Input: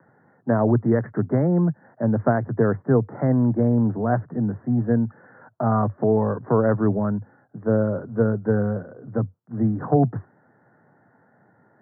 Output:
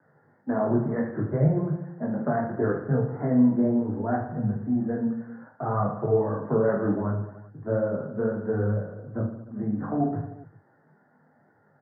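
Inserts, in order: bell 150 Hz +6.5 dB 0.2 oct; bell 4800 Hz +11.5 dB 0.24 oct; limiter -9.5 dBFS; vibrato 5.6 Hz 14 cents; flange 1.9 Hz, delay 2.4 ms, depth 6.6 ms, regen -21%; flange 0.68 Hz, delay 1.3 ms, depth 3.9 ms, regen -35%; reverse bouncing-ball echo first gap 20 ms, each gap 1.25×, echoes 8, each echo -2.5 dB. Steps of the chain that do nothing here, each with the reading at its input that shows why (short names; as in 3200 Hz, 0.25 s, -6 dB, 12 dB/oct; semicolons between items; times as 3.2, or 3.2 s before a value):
bell 4800 Hz: input band ends at 1500 Hz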